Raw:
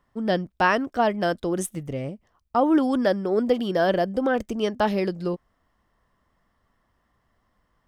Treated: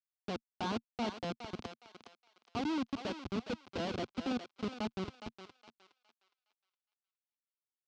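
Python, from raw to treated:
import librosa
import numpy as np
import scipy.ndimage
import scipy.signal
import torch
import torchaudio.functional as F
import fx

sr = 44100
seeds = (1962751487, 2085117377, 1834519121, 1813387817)

y = fx.law_mismatch(x, sr, coded='A')
y = fx.low_shelf(y, sr, hz=240.0, db=-6.5)
y = fx.schmitt(y, sr, flips_db=-20.5)
y = fx.cabinet(y, sr, low_hz=120.0, low_slope=12, high_hz=5100.0, hz=(140.0, 230.0, 580.0, 1800.0), db=(-8, 6, -7, -10))
y = fx.echo_thinned(y, sr, ms=414, feedback_pct=31, hz=710.0, wet_db=-7)
y = y * 10.0 ** (-5.5 / 20.0)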